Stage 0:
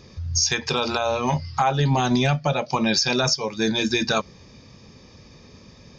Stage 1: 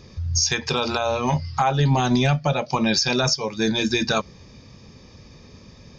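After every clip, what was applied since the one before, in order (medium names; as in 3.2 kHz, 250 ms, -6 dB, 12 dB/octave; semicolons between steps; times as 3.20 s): bass shelf 120 Hz +4.5 dB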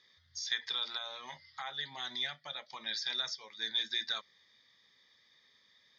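two resonant band-passes 2.6 kHz, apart 0.81 oct; trim -4 dB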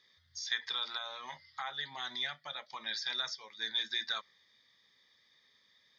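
dynamic bell 1.2 kHz, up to +5 dB, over -53 dBFS, Q 1; trim -1.5 dB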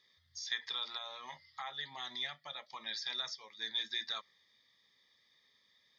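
band-stop 1.5 kHz, Q 6.2; trim -2.5 dB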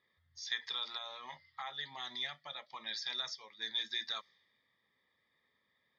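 level-controlled noise filter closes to 1.7 kHz, open at -37 dBFS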